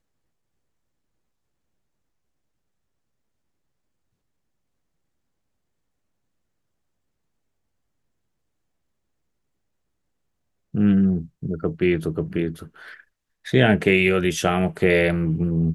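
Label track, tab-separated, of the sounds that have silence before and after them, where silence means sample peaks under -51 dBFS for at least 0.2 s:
10.740000	13.040000	sound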